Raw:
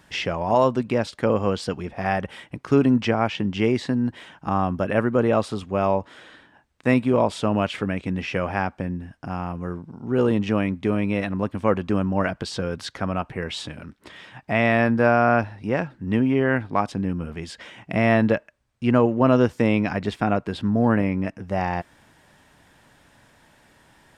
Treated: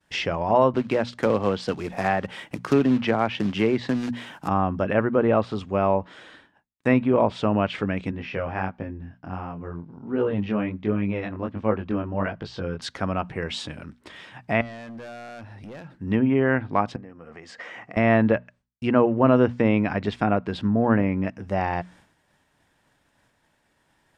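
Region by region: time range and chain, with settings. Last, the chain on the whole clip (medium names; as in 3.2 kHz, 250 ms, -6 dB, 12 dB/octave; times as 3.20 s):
0.74–4.48 s: peaking EQ 69 Hz -5.5 dB 1.7 oct + short-mantissa float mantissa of 2-bit + three bands compressed up and down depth 40%
8.11–12.82 s: chorus 1.4 Hz, delay 18.5 ms, depth 5.5 ms + distance through air 170 m
14.61–15.97 s: compression 2.5:1, threshold -38 dBFS + hard clipper -35.5 dBFS
16.96–17.97 s: compression 5:1, threshold -40 dBFS + cabinet simulation 130–7600 Hz, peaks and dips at 170 Hz -4 dB, 490 Hz +8 dB, 730 Hz +8 dB, 1.2 kHz +9 dB, 1.9 kHz +9 dB, 3.5 kHz -6 dB
whole clip: expander -47 dBFS; hum notches 60/120/180/240 Hz; low-pass that closes with the level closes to 2.7 kHz, closed at -17.5 dBFS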